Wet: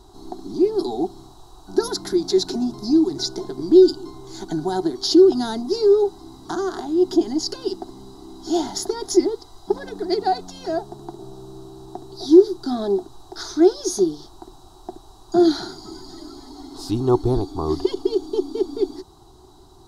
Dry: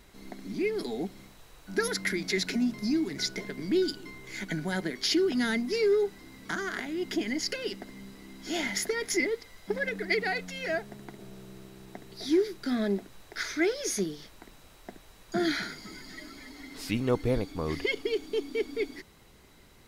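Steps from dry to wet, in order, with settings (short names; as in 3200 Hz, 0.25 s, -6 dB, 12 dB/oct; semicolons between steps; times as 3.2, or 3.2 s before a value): EQ curve 130 Hz 0 dB, 200 Hz -11 dB, 370 Hz +8 dB, 520 Hz -17 dB, 750 Hz +7 dB, 1200 Hz -2 dB, 2200 Hz -30 dB, 3900 Hz -2 dB, 8700 Hz -5 dB, 15000 Hz -13 dB; gain +8.5 dB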